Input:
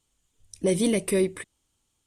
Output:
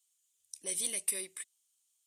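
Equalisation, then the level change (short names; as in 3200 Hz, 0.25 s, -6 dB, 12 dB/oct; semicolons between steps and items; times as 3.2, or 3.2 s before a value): differentiator; 0.0 dB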